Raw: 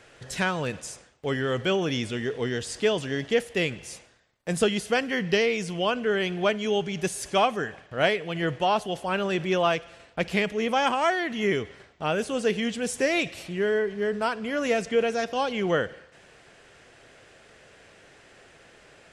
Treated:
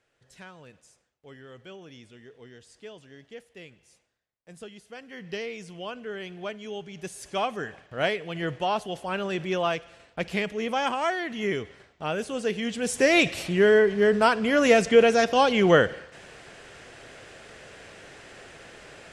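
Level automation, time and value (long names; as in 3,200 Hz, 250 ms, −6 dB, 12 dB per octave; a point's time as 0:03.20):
0:04.90 −20 dB
0:05.35 −11 dB
0:06.89 −11 dB
0:07.68 −3 dB
0:12.58 −3 dB
0:13.24 +6.5 dB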